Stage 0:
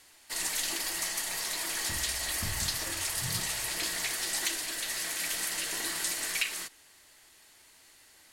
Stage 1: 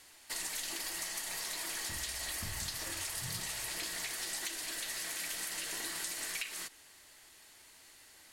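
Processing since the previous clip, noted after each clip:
downward compressor 4 to 1, threshold −37 dBFS, peak gain reduction 11 dB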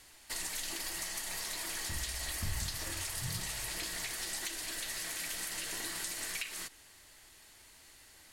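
low-shelf EQ 120 Hz +10.5 dB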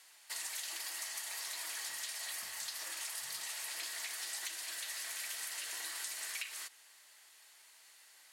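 high-pass filter 750 Hz 12 dB per octave
level −2.5 dB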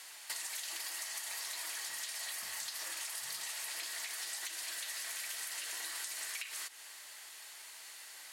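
downward compressor 6 to 1, threshold −49 dBFS, peak gain reduction 12.5 dB
level +10 dB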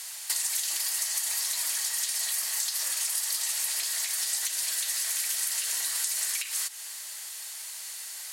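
bass and treble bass −13 dB, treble +10 dB
level +4 dB

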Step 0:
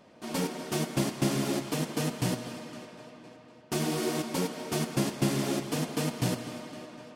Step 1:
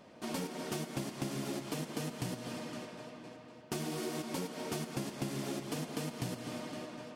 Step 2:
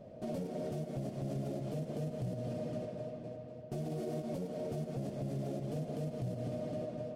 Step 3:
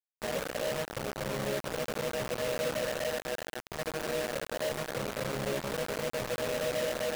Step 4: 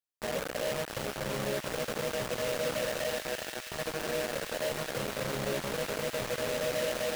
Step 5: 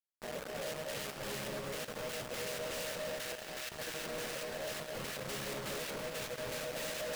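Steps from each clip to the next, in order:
downward compressor, threshold −35 dBFS, peak gain reduction 12.5 dB
drawn EQ curve 120 Hz 0 dB, 310 Hz −12 dB, 640 Hz −2 dB, 910 Hz −22 dB; brickwall limiter −42 dBFS, peak gain reduction 11 dB; level +11.5 dB
resonators tuned to a chord C#2 minor, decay 0.35 s; hollow resonant body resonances 510/1,900 Hz, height 17 dB, ringing for 35 ms; bit reduction 7 bits; level +8.5 dB
delay with a high-pass on its return 335 ms, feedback 76%, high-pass 1,900 Hz, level −5.5 dB
gate pattern "..x..x.xx.xx" 122 BPM −12 dB; on a send at −13 dB: convolution reverb RT60 0.40 s, pre-delay 225 ms; on the sum: wave folding −37.5 dBFS; level +3.5 dB

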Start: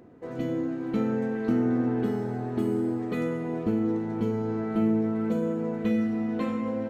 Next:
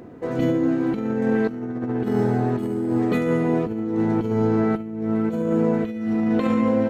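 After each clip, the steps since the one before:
compressor whose output falls as the input rises −29 dBFS, ratio −0.5
level +8 dB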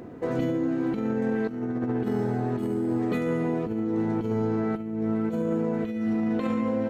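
downward compressor, threshold −23 dBFS, peak gain reduction 7.5 dB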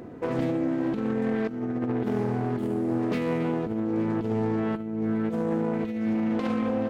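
phase distortion by the signal itself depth 0.27 ms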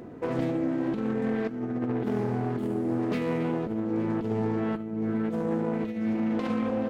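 flanger 1.9 Hz, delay 4.5 ms, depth 4.1 ms, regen −79%
level +3 dB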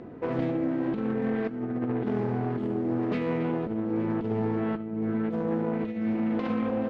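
low-pass filter 3,700 Hz 12 dB per octave

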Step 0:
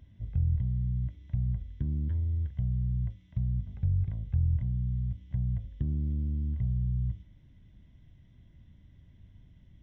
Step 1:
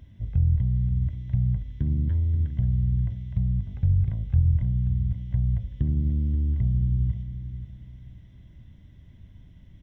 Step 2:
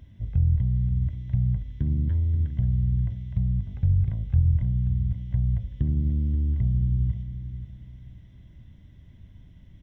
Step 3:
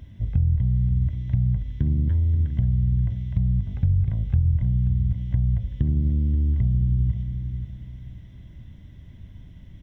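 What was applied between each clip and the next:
repeating echo 532 ms, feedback 31%, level −11.5 dB; level +6 dB
no processing that can be heard
downward compressor 2.5 to 1, threshold −24 dBFS, peak gain reduction 6.5 dB; level +5.5 dB

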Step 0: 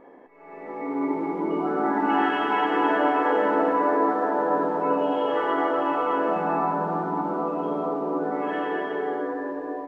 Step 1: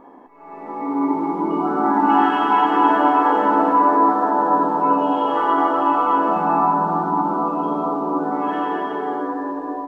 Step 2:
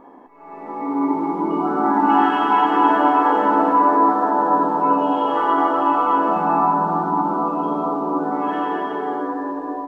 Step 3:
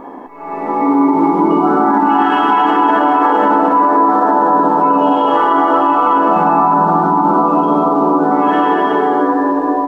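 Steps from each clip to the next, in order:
graphic EQ with 10 bands 125 Hz −5 dB, 250 Hz +3 dB, 500 Hz −9 dB, 1,000 Hz +7 dB, 2,000 Hz −10 dB; level +6.5 dB
no processing that can be heard
in parallel at 0 dB: downward compressor, threshold −26 dBFS, peak gain reduction 14.5 dB; on the sum: brickwall limiter −11 dBFS, peak gain reduction 8.5 dB; level +7.5 dB

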